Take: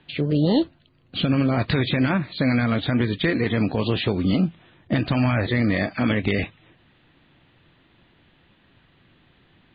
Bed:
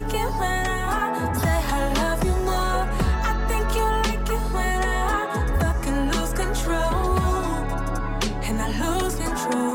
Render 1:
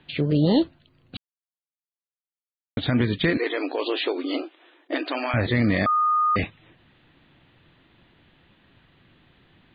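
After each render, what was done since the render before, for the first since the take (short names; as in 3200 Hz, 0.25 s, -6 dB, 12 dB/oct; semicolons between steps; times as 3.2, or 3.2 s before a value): 1.17–2.77 mute; 3.37–5.34 brick-wall FIR high-pass 270 Hz; 5.86–6.36 bleep 1230 Hz -17.5 dBFS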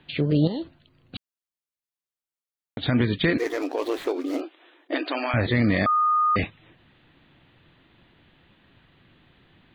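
0.47–2.83 compressor 10:1, threshold -26 dBFS; 3.38–4.41 median filter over 15 samples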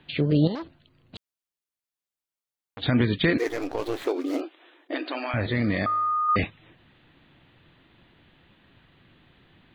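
0.55–2.82 core saturation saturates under 1600 Hz; 3.48–4.02 half-wave gain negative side -7 dB; 4.92–6.29 resonator 52 Hz, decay 1.1 s, mix 40%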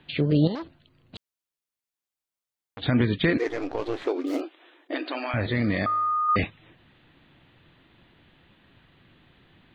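2.8–4.27 air absorption 100 m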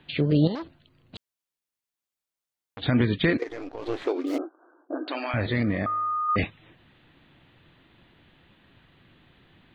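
3.35–3.83 level quantiser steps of 12 dB; 4.38–5.08 Chebyshev low-pass 1600 Hz, order 10; 5.63–6.38 air absorption 440 m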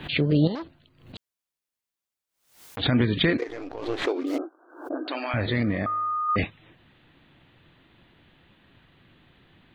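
backwards sustainer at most 110 dB/s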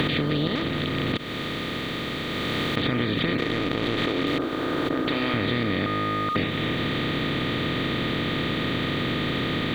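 per-bin compression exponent 0.2; compressor 3:1, threshold -24 dBFS, peak gain reduction 10 dB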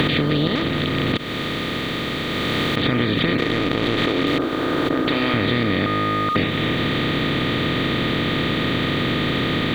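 gain +5 dB; limiter -2 dBFS, peak gain reduction 2 dB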